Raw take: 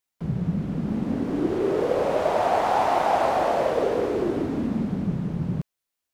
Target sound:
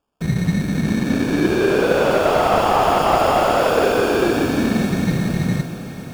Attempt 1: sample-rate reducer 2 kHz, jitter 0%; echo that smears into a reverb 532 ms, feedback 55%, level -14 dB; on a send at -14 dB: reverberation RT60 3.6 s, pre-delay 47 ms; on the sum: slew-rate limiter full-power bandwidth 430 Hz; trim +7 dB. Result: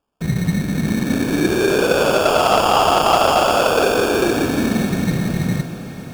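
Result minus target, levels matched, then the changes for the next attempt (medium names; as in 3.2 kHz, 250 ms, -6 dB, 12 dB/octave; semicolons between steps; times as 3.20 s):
slew-rate limiter: distortion -8 dB
change: slew-rate limiter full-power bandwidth 120.5 Hz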